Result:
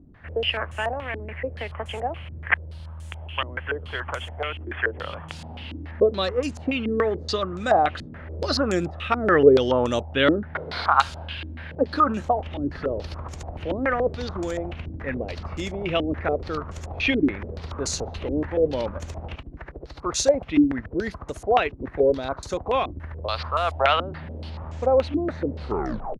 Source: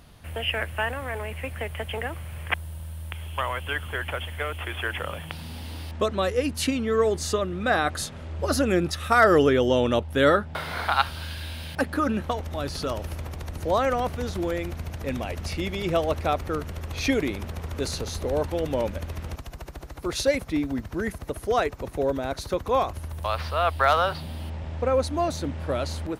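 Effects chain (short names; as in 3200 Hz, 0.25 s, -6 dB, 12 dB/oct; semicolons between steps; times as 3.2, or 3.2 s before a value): tape stop at the end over 0.62 s; stepped low-pass 7 Hz 300–7000 Hz; gain -1.5 dB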